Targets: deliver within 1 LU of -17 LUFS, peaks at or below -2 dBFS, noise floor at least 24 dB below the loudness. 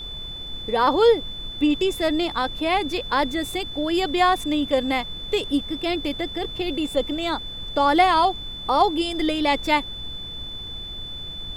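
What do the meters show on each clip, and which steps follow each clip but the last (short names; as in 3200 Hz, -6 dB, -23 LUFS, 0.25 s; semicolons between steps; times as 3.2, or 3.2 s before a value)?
steady tone 3500 Hz; tone level -33 dBFS; noise floor -35 dBFS; noise floor target -47 dBFS; loudness -23.0 LUFS; peak -5.5 dBFS; loudness target -17.0 LUFS
-> notch 3500 Hz, Q 30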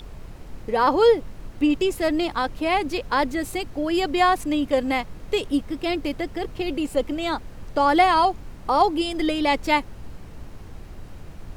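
steady tone none; noise floor -41 dBFS; noise floor target -47 dBFS
-> noise print and reduce 6 dB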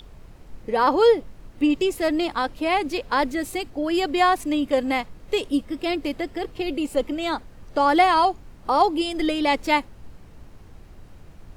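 noise floor -46 dBFS; noise floor target -47 dBFS
-> noise print and reduce 6 dB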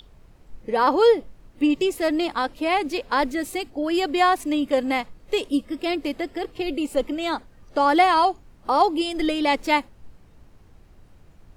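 noise floor -52 dBFS; loudness -22.5 LUFS; peak -6.0 dBFS; loudness target -17.0 LUFS
-> gain +5.5 dB; limiter -2 dBFS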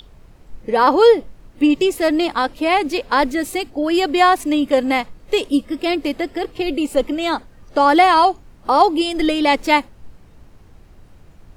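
loudness -17.5 LUFS; peak -2.0 dBFS; noise floor -46 dBFS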